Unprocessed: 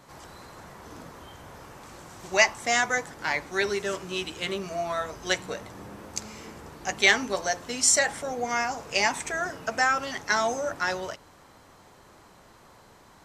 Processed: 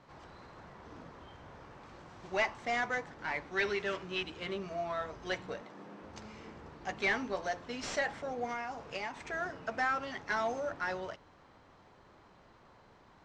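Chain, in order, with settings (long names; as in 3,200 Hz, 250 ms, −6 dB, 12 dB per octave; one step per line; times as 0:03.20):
variable-slope delta modulation 64 kbit/s
0:03.54–0:04.23: dynamic equaliser 2,500 Hz, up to +8 dB, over −41 dBFS, Q 0.7
0:05.61–0:06.02: high-pass filter 170 Hz 24 dB per octave
0:08.49–0:09.31: downward compressor 6 to 1, threshold −28 dBFS, peak gain reduction 8.5 dB
soft clipping −16 dBFS, distortion −16 dB
high-frequency loss of the air 180 metres
level −5.5 dB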